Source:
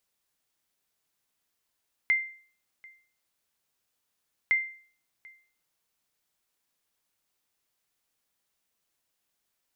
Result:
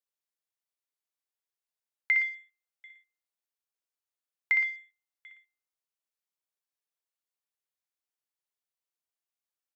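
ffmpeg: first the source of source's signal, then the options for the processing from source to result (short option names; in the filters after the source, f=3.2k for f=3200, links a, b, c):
-f lavfi -i "aevalsrc='0.141*(sin(2*PI*2090*mod(t,2.41))*exp(-6.91*mod(t,2.41)/0.46)+0.0501*sin(2*PI*2090*max(mod(t,2.41)-0.74,0))*exp(-6.91*max(mod(t,2.41)-0.74,0)/0.46))':d=4.82:s=44100"
-filter_complex "[0:a]highpass=f=350:w=0.5412,highpass=f=350:w=1.3066,afwtdn=0.00398,asplit=2[a][b];[b]aecho=0:1:61.22|116.6:0.501|0.282[c];[a][c]amix=inputs=2:normalize=0"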